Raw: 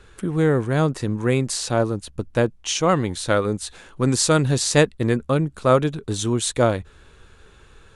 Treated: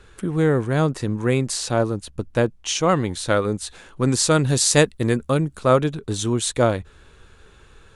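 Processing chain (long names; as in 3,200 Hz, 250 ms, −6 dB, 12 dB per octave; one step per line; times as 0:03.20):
0:04.48–0:05.58: high-shelf EQ 6,500 Hz +9 dB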